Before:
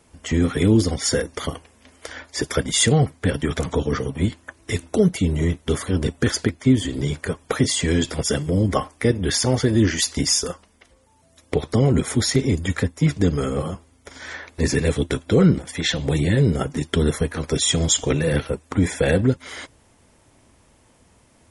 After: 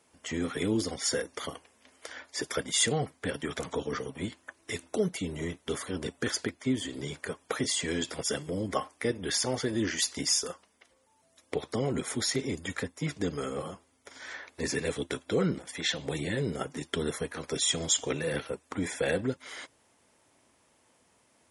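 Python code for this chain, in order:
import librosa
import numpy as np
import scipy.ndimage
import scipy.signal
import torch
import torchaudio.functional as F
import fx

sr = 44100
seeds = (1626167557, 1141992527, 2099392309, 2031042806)

y = fx.highpass(x, sr, hz=390.0, slope=6)
y = y * librosa.db_to_amplitude(-7.0)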